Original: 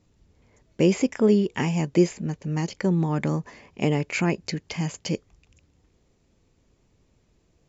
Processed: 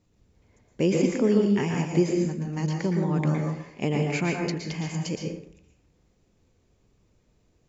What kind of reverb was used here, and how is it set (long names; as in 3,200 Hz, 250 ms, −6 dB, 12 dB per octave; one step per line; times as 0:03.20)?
dense smooth reverb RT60 0.65 s, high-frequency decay 0.65×, pre-delay 105 ms, DRR 1 dB
level −4 dB